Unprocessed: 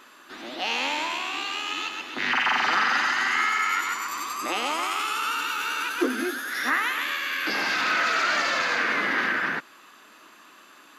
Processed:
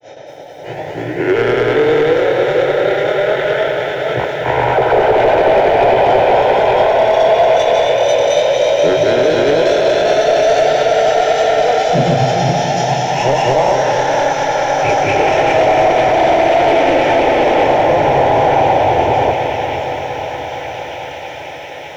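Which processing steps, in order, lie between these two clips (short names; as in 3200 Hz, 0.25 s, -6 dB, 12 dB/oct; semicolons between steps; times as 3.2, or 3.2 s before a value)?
de-hum 253.3 Hz, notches 36; grains 0.1 s, pitch spread up and down by 0 st; thin delay 1.061 s, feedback 48%, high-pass 4200 Hz, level -6 dB; speed mistake 15 ips tape played at 7.5 ips; HPF 190 Hz 6 dB/oct; fixed phaser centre 480 Hz, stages 4; diffused feedback echo 0.542 s, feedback 58%, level -12.5 dB; soft clip -27.5 dBFS, distortion -13 dB; tilt -2 dB/oct; maximiser +25.5 dB; lo-fi delay 0.232 s, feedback 80%, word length 7-bit, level -11 dB; gain -4.5 dB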